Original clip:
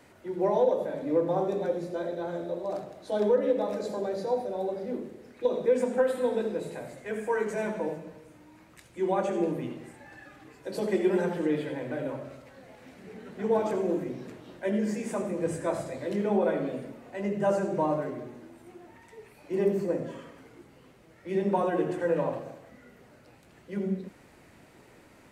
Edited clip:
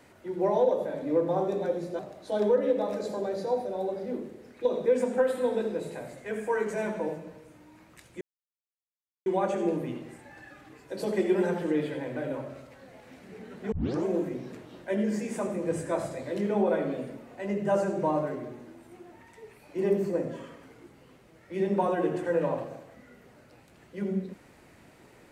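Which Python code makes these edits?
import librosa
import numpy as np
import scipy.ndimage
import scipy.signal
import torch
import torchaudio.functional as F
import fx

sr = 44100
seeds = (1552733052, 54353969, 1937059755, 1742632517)

y = fx.edit(x, sr, fx.cut(start_s=1.99, length_s=0.8),
    fx.insert_silence(at_s=9.01, length_s=1.05),
    fx.tape_start(start_s=13.47, length_s=0.33), tone=tone)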